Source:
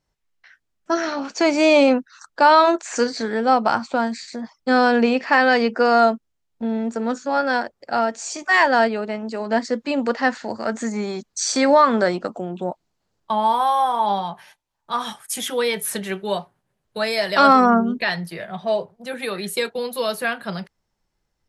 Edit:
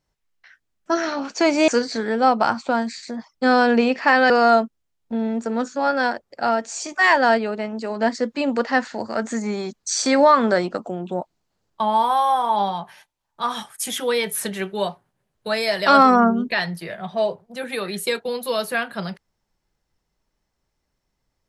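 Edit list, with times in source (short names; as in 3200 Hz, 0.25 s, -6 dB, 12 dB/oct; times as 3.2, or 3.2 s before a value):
1.68–2.93 cut
5.55–5.8 cut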